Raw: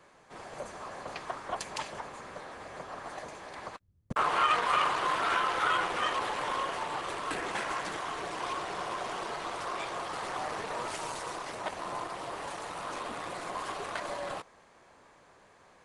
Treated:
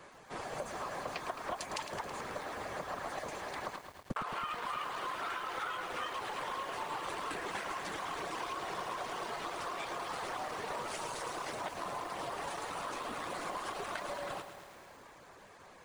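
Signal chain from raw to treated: compression 10:1, threshold -40 dBFS, peak gain reduction 18.5 dB; reverb removal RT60 0.58 s; bit-crushed delay 108 ms, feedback 80%, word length 10-bit, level -9 dB; trim +5 dB

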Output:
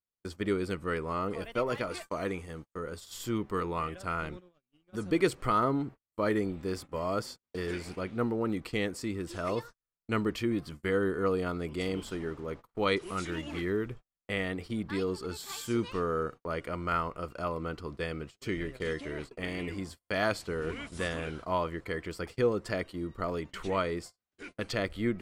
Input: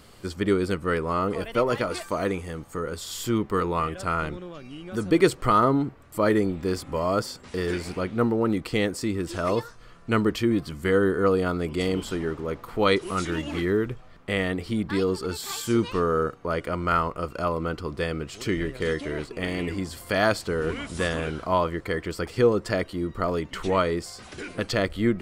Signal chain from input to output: vibrato 0.77 Hz 18 cents; dynamic bell 2.3 kHz, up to +3 dB, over -42 dBFS, Q 2.4; gate -35 dBFS, range -44 dB; trim -7.5 dB

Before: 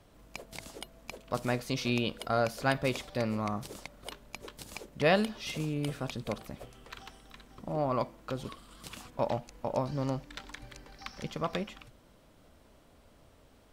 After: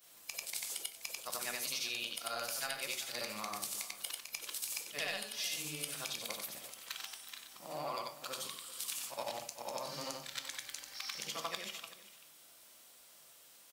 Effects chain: short-time spectra conjugated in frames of 187 ms; differentiator; compression 6:1, threshold -51 dBFS, peak gain reduction 12 dB; saturation -37.5 dBFS, distortion -27 dB; on a send: delay 385 ms -16 dB; on the sum: simulated room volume 290 m³, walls furnished, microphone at 0.78 m; trim +15.5 dB

